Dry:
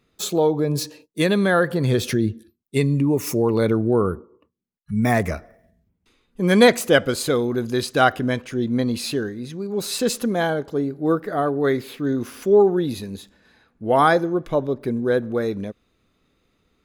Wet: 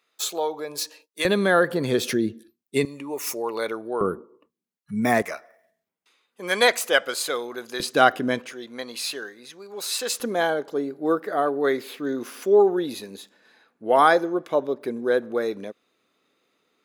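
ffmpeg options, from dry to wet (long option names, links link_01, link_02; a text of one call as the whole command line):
ffmpeg -i in.wav -af "asetnsamples=nb_out_samples=441:pad=0,asendcmd='1.25 highpass f 240;2.85 highpass f 690;4.01 highpass f 230;5.22 highpass f 690;7.8 highpass f 230;8.52 highpass f 750;10.2 highpass f 350',highpass=750" out.wav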